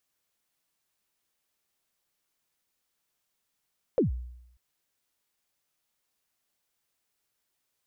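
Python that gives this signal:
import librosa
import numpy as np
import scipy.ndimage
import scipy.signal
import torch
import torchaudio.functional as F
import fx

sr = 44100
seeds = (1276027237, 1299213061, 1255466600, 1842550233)

y = fx.drum_kick(sr, seeds[0], length_s=0.59, level_db=-18.0, start_hz=570.0, end_hz=61.0, sweep_ms=129.0, decay_s=0.82, click=False)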